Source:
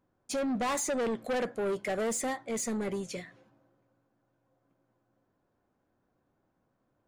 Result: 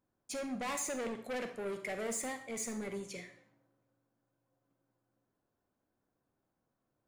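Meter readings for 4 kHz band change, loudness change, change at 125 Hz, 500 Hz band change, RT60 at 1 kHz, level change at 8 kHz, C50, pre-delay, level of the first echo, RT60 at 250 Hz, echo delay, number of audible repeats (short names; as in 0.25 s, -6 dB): -5.5 dB, -6.5 dB, -7.5 dB, -8.0 dB, 0.60 s, -4.0 dB, 9.5 dB, 34 ms, none, 0.50 s, none, none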